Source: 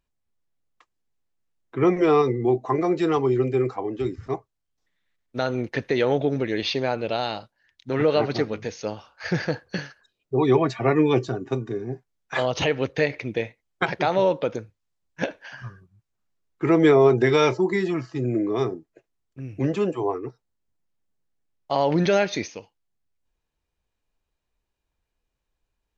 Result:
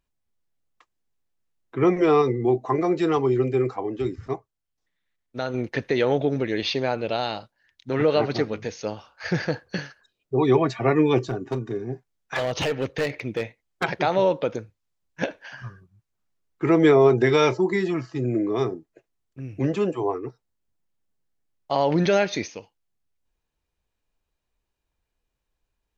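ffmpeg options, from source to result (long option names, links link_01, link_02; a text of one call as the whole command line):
ffmpeg -i in.wav -filter_complex "[0:a]asettb=1/sr,asplit=3[link_01][link_02][link_03];[link_01]atrim=end=11.184[link_04];[link_02]atrim=start=11.18:end=13.84,asetpts=PTS-STARTPTS,afade=type=in:duration=0.004:curve=qsin,afade=type=out:start_time=2.656:duration=0.004:curve=qsin,asoftclip=type=hard:threshold=-20dB[link_05];[link_03]atrim=start=13.836[link_06];[link_04][link_05]acrossfade=duration=0.004:curve1=hsin:curve2=qsin[link_07];[link_07][link_06]acrossfade=duration=0.004:curve1=qsin:curve2=hsin,asplit=3[link_08][link_09][link_10];[link_08]atrim=end=4.332[link_11];[link_09]atrim=start=4.328:end=5.542,asetpts=PTS-STARTPTS,volume=-3.5dB[link_12];[link_10]atrim=start=5.538[link_13];[link_11][link_12]acrossfade=duration=0.004:curve1=hsin:curve2=hsin[link_14];[link_14][link_13]acrossfade=duration=0.004:curve1=hsin:curve2=hsin" out.wav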